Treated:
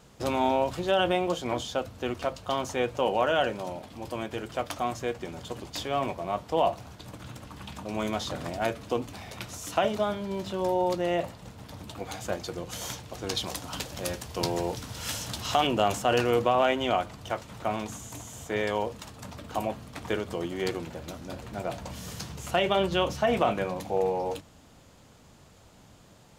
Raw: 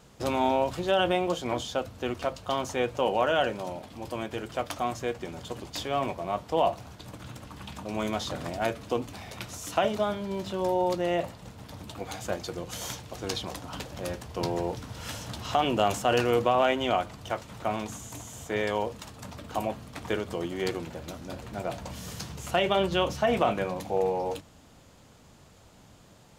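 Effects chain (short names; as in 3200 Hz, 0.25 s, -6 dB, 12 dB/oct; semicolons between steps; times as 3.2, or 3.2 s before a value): 13.37–15.67 high shelf 2900 Hz +8.5 dB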